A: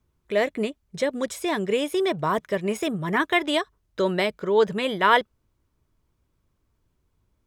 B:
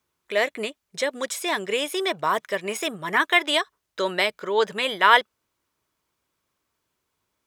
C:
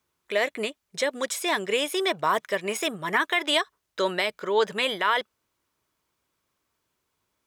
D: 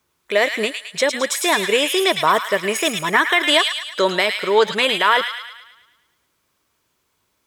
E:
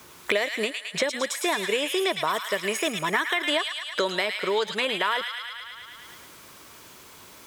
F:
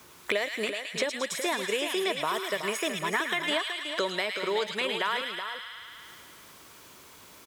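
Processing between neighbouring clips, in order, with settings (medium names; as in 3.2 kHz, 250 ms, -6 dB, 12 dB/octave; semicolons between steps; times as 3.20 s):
high-pass 1.1 kHz 6 dB/octave; trim +5.5 dB
peak limiter -12 dBFS, peak gain reduction 10.5 dB
feedback echo behind a high-pass 108 ms, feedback 52%, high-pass 1.8 kHz, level -4 dB; trim +7.5 dB
three bands compressed up and down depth 100%; trim -9 dB
delay 374 ms -8.5 dB; trim -4 dB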